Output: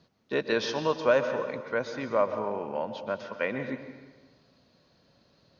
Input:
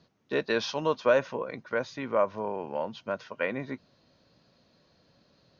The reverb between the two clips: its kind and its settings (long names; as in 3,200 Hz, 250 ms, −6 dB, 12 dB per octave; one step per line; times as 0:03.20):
dense smooth reverb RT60 1.3 s, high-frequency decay 0.8×, pre-delay 110 ms, DRR 8.5 dB